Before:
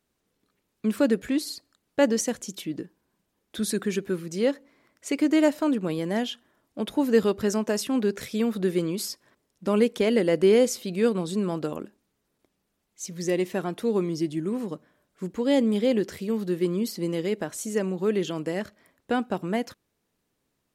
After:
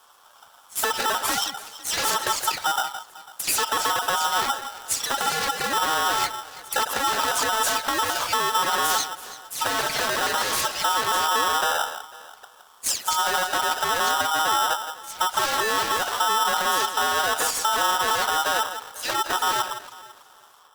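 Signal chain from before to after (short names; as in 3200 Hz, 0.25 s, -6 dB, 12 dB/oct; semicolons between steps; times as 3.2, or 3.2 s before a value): spectral delay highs early, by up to 0.151 s; low shelf 150 Hz +6 dB; sine folder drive 17 dB, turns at -8.5 dBFS; compressor 4:1, threshold -23 dBFS, peak gain reduction 10.5 dB; band shelf 1500 Hz -14.5 dB; echo with dull and thin repeats by turns 0.166 s, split 1200 Hz, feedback 54%, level -10 dB; polarity switched at an audio rate 1100 Hz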